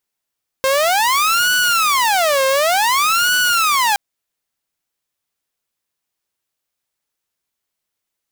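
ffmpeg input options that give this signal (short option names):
-f lavfi -i "aevalsrc='0.299*(2*mod((1006*t-474/(2*PI*0.55)*sin(2*PI*0.55*t)),1)-1)':d=3.32:s=44100"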